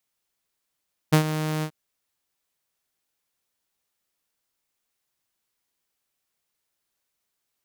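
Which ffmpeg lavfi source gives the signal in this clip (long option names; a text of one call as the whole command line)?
ffmpeg -f lavfi -i "aevalsrc='0.316*(2*mod(155*t,1)-1)':duration=0.584:sample_rate=44100,afade=type=in:duration=0.016,afade=type=out:start_time=0.016:duration=0.093:silence=0.251,afade=type=out:start_time=0.51:duration=0.074" out.wav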